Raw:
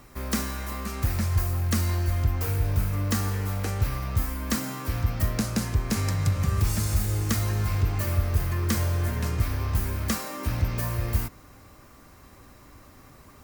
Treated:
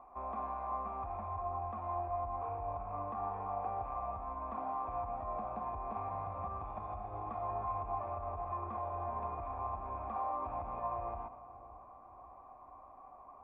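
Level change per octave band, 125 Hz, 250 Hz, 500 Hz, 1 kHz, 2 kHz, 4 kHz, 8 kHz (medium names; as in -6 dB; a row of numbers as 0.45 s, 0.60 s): -24.0 dB, -20.5 dB, -4.0 dB, +2.0 dB, -23.5 dB, under -40 dB, under -40 dB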